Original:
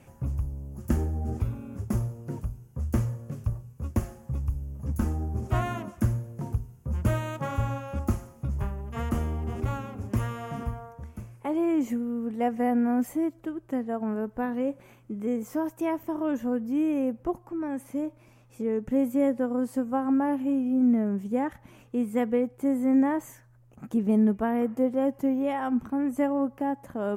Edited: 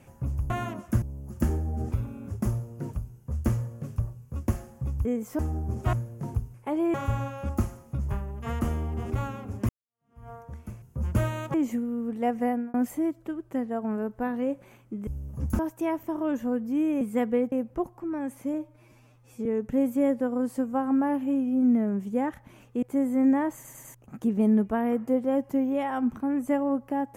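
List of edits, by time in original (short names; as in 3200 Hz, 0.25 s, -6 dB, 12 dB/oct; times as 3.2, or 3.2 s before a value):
4.53–5.05 swap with 15.25–15.59
5.59–6.11 move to 0.5
6.72–7.44 swap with 11.32–11.72
10.19–10.8 fade in exponential
12.63–12.92 fade out
18.03–18.64 stretch 1.5×
22.01–22.52 move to 17.01
23.24 stutter in place 0.10 s, 4 plays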